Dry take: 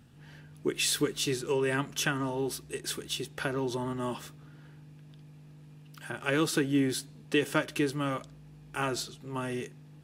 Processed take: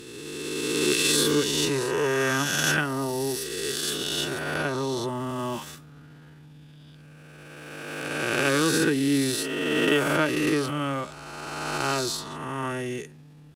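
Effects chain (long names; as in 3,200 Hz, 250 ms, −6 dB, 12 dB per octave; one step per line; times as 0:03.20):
peak hold with a rise ahead of every peak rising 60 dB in 1.79 s
tempo change 0.74×
level +1.5 dB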